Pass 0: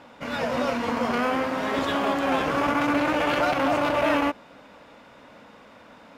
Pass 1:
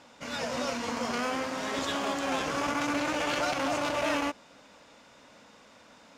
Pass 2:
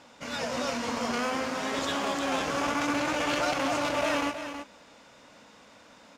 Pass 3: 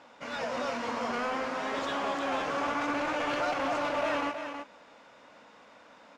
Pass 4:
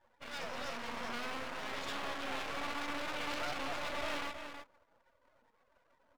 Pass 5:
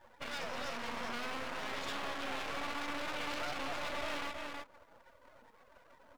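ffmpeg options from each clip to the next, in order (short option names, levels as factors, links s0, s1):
-af "equalizer=f=6600:t=o:w=1.5:g=14,volume=0.422"
-af "aecho=1:1:322:0.335,volume=1.12"
-filter_complex "[0:a]asplit=2[s0][s1];[s1]highpass=f=720:p=1,volume=4.47,asoftclip=type=tanh:threshold=0.211[s2];[s0][s2]amix=inputs=2:normalize=0,lowpass=f=1300:p=1,volume=0.501,volume=0.631"
-af "afftdn=nr=33:nf=-47,aeval=exprs='max(val(0),0)':c=same,highshelf=f=2300:g=9.5,volume=0.501"
-af "acompressor=threshold=0.00224:ratio=2,volume=3.16"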